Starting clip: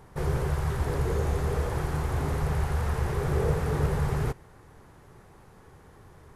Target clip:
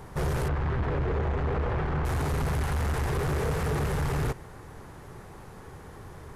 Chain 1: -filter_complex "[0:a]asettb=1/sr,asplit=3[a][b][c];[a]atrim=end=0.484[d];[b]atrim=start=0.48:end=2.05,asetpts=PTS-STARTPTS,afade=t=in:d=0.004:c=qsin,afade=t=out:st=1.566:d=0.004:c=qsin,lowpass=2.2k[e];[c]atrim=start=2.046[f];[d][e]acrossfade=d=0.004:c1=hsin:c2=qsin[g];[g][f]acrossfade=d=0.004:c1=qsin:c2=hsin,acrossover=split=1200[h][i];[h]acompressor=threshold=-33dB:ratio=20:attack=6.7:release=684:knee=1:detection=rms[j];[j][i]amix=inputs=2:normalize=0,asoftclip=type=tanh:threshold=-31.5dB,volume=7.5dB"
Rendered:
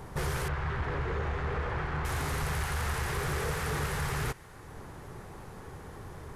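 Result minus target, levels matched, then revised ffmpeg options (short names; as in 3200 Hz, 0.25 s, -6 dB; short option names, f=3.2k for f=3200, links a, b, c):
compressor: peak gain reduction +9.5 dB
-filter_complex "[0:a]asettb=1/sr,asplit=3[a][b][c];[a]atrim=end=0.484[d];[b]atrim=start=0.48:end=2.05,asetpts=PTS-STARTPTS,afade=t=in:d=0.004:c=qsin,afade=t=out:st=1.566:d=0.004:c=qsin,lowpass=2.2k[e];[c]atrim=start=2.046[f];[d][e]acrossfade=d=0.004:c1=hsin:c2=qsin[g];[g][f]acrossfade=d=0.004:c1=qsin:c2=hsin,acrossover=split=1200[h][i];[h]acompressor=threshold=-23dB:ratio=20:attack=6.7:release=684:knee=1:detection=rms[j];[j][i]amix=inputs=2:normalize=0,asoftclip=type=tanh:threshold=-31.5dB,volume=7.5dB"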